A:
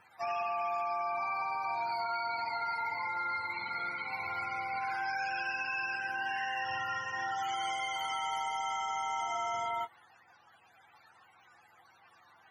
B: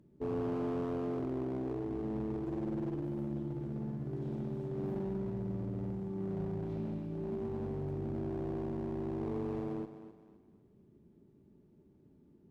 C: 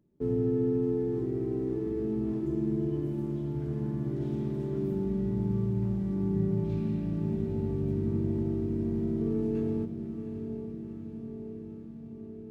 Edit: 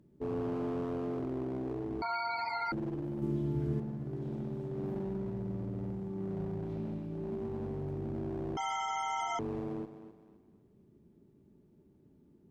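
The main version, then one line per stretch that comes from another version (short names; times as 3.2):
B
2.02–2.72 from A
3.22–3.8 from C
8.57–9.39 from A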